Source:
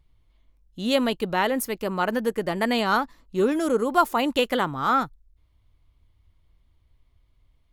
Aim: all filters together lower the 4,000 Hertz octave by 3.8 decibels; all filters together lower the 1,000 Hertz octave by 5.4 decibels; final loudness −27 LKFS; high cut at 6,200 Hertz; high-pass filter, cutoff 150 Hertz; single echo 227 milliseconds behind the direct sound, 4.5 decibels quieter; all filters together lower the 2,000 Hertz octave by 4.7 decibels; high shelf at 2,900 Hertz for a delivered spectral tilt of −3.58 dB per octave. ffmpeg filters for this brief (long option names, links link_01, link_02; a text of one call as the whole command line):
ffmpeg -i in.wav -af "highpass=150,lowpass=6200,equalizer=frequency=1000:width_type=o:gain=-6.5,equalizer=frequency=2000:width_type=o:gain=-4,highshelf=frequency=2900:gain=4,equalizer=frequency=4000:width_type=o:gain=-5.5,aecho=1:1:227:0.596,volume=-1.5dB" out.wav